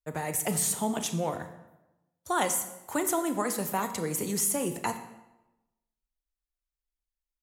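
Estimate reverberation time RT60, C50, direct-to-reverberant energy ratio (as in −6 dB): 0.95 s, 10.5 dB, 8.0 dB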